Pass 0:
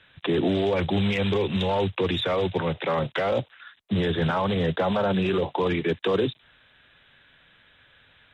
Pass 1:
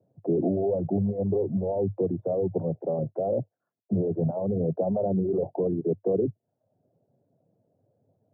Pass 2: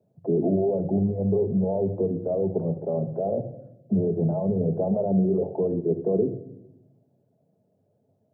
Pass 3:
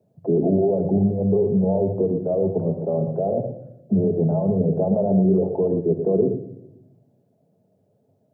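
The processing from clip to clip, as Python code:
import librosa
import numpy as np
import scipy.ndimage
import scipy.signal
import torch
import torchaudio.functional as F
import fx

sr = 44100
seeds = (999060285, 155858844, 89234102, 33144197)

y1 = fx.dereverb_blind(x, sr, rt60_s=0.53)
y1 = scipy.signal.sosfilt(scipy.signal.cheby1(4, 1.0, [100.0, 690.0], 'bandpass', fs=sr, output='sos'), y1)
y2 = fx.room_shoebox(y1, sr, seeds[0], volume_m3=2600.0, walls='furnished', distance_m=1.4)
y3 = y2 + 10.0 ** (-9.0 / 20.0) * np.pad(y2, (int(117 * sr / 1000.0), 0))[:len(y2)]
y3 = F.gain(torch.from_numpy(y3), 3.5).numpy()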